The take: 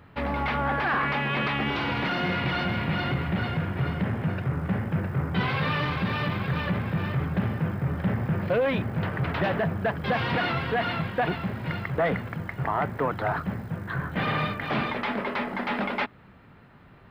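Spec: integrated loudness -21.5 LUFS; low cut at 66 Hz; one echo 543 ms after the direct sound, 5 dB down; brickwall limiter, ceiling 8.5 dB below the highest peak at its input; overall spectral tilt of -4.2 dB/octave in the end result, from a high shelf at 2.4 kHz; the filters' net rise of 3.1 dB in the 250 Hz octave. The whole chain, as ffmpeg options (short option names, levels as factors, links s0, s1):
-af "highpass=66,equalizer=f=250:t=o:g=4.5,highshelf=f=2400:g=9,alimiter=limit=0.1:level=0:latency=1,aecho=1:1:543:0.562,volume=2"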